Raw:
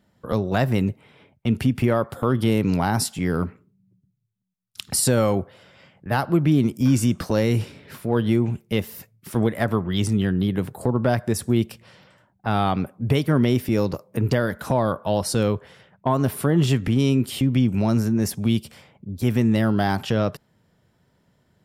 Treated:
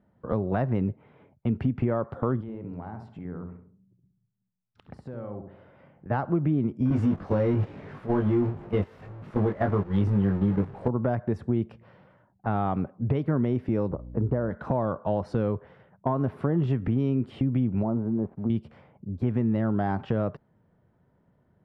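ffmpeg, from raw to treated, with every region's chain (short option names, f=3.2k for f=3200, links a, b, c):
-filter_complex "[0:a]asettb=1/sr,asplit=3[a][b][c];[a]atrim=end=2.414[d];[b]atrim=start=2.41:end=6.1,asetpts=PTS-STARTPTS,afade=t=in:d=0.004:c=qsin,afade=t=out:st=3.686:d=0.004:c=qsin,acompressor=threshold=-38dB:ratio=3:attack=3.2:release=140:knee=1:detection=peak,highshelf=f=3.6k:g=-6.5,asplit=2[e][f];[f]adelay=67,lowpass=f=1.2k:p=1,volume=-5dB,asplit=2[g][h];[h]adelay=67,lowpass=f=1.2k:p=1,volume=0.4,asplit=2[i][j];[j]adelay=67,lowpass=f=1.2k:p=1,volume=0.4,asplit=2[k][l];[l]adelay=67,lowpass=f=1.2k:p=1,volume=0.4,asplit=2[m][n];[n]adelay=67,lowpass=f=1.2k:p=1,volume=0.4[o];[e][g][i][k][m][o]amix=inputs=6:normalize=0,atrim=end_sample=162729[p];[c]atrim=start=6.096[q];[d][p]acrossfade=d=0.004:c1=hsin:c2=qsin[r];[r][q]acrossfade=d=0.004:c1=qsin:c2=hsin,asettb=1/sr,asplit=3[s][t][u];[s]atrim=end=6.904[v];[t]atrim=start=6.9:end=10.88,asetpts=PTS-STARTPTS,afade=t=in:d=0.004:c=qsin,afade=t=out:st=3.976:d=0.004:c=qsin,aeval=exprs='val(0)+0.5*0.0668*sgn(val(0))':c=same,asplit=2[w][x];[x]adelay=20,volume=-3dB[y];[w][y]amix=inputs=2:normalize=0,atrim=end_sample=175518,agate=range=-12dB:threshold=-21dB:ratio=16:release=100:detection=peak[z];[u]atrim=start=10.876[aa];[v][z]acrossfade=d=0.004:c1=hsin:c2=qsin[ab];[ab][aa]acrossfade=d=0.004:c1=qsin:c2=hsin,asettb=1/sr,asplit=3[ac][ad][ae];[ac]atrim=end=13.904[af];[ad]atrim=start=13.9:end=14.51,asetpts=PTS-STARTPTS,afade=t=in:d=0.004:c=qsin,afade=t=out:st=0.606:d=0.004:c=qsin,lowpass=1.2k,aeval=exprs='val(0)+0.0126*(sin(2*PI*60*n/s)+sin(2*PI*2*60*n/s)/2+sin(2*PI*3*60*n/s)/3+sin(2*PI*4*60*n/s)/4+sin(2*PI*5*60*n/s)/5)':c=same[ag];[ae]atrim=start=14.506[ah];[af][ag]acrossfade=d=0.004:c1=hsin:c2=qsin[ai];[ai][ah]acrossfade=d=0.004:c1=qsin:c2=hsin,asettb=1/sr,asplit=3[aj][ak][al];[aj]atrim=end=17.834[am];[ak]atrim=start=17.83:end=18.5,asetpts=PTS-STARTPTS,afade=t=in:d=0.004:c=qsin,afade=t=out:st=0.666:d=0.004:c=qsin,lowpass=f=1.1k:w=0.5412,lowpass=f=1.1k:w=1.3066,lowshelf=f=120:g=-11.5,aeval=exprs='sgn(val(0))*max(abs(val(0))-0.00237,0)':c=same[an];[al]atrim=start=18.496[ao];[am][an]acrossfade=d=0.004:c1=hsin:c2=qsin[ap];[ap][ao]acrossfade=d=0.004:c1=qsin:c2=hsin,lowpass=1.3k,acompressor=threshold=-21dB:ratio=2.5,volume=-1.5dB"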